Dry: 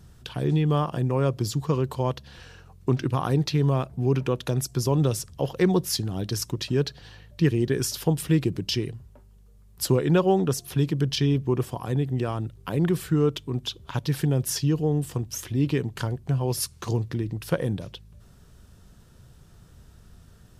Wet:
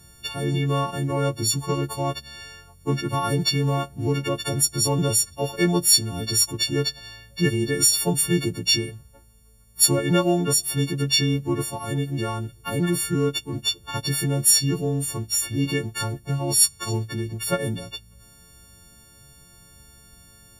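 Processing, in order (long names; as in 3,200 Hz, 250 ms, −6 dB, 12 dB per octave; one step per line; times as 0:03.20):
every partial snapped to a pitch grid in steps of 4 semitones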